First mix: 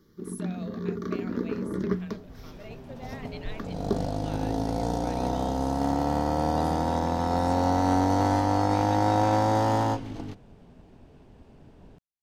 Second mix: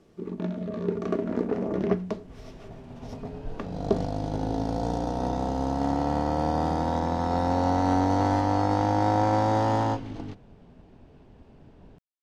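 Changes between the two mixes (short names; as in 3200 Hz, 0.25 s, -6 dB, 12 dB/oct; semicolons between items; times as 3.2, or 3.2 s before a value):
speech: muted; first sound: remove fixed phaser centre 2600 Hz, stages 6; master: add air absorption 59 m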